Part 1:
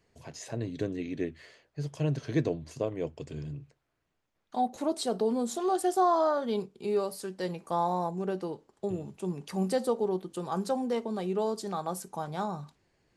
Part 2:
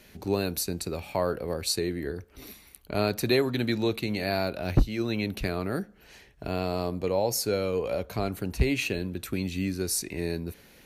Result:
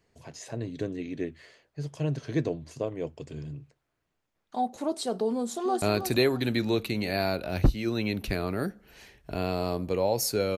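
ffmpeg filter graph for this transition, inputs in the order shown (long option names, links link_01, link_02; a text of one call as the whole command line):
ffmpeg -i cue0.wav -i cue1.wav -filter_complex "[0:a]apad=whole_dur=10.57,atrim=end=10.57,atrim=end=5.822[link_01];[1:a]atrim=start=2.948:end=7.7[link_02];[link_01][link_02]acrossfade=duration=0.004:curve1=hsin:curve2=hsin,asplit=2[link_03][link_04];[link_04]afade=type=in:start_time=5.33:duration=0.01,afade=type=out:start_time=5.82:duration=0.01,aecho=0:1:320|640|960:0.354813|0.0887033|0.0221758[link_05];[link_03][link_05]amix=inputs=2:normalize=0" out.wav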